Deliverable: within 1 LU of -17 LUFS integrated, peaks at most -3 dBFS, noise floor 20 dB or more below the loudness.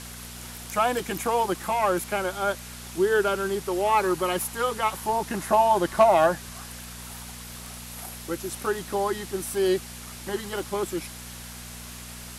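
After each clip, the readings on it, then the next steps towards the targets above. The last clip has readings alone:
hum 60 Hz; harmonics up to 240 Hz; hum level -42 dBFS; noise floor -41 dBFS; noise floor target -46 dBFS; loudness -25.5 LUFS; peak -9.0 dBFS; loudness target -17.0 LUFS
-> de-hum 60 Hz, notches 4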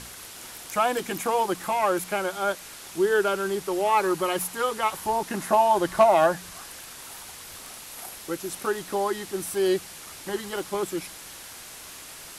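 hum none; noise floor -43 dBFS; noise floor target -46 dBFS
-> denoiser 6 dB, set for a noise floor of -43 dBFS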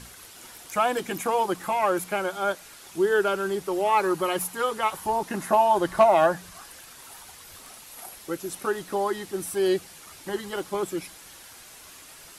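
noise floor -47 dBFS; loudness -25.5 LUFS; peak -9.5 dBFS; loudness target -17.0 LUFS
-> gain +8.5 dB; limiter -3 dBFS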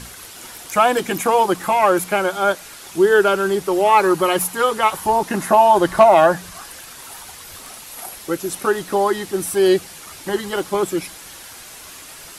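loudness -17.5 LUFS; peak -3.0 dBFS; noise floor -39 dBFS

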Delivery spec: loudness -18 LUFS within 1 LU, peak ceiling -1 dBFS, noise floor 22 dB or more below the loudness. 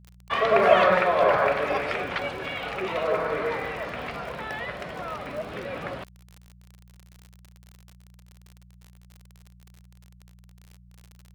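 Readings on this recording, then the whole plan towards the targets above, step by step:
ticks 53/s; hum 60 Hz; harmonics up to 180 Hz; hum level -50 dBFS; loudness -25.5 LUFS; peak -4.5 dBFS; loudness target -18.0 LUFS
-> de-click; de-hum 60 Hz, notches 3; gain +7.5 dB; limiter -1 dBFS

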